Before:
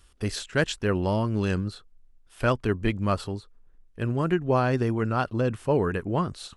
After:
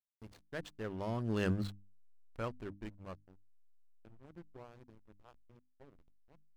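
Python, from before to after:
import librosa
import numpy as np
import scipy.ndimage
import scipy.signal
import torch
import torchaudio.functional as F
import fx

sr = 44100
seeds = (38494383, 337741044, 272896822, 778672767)

y = fx.doppler_pass(x, sr, speed_mps=17, closest_m=3.0, pass_at_s=1.6)
y = fx.backlash(y, sr, play_db=-40.0)
y = fx.hum_notches(y, sr, base_hz=50, count=6)
y = F.gain(torch.from_numpy(y), -2.0).numpy()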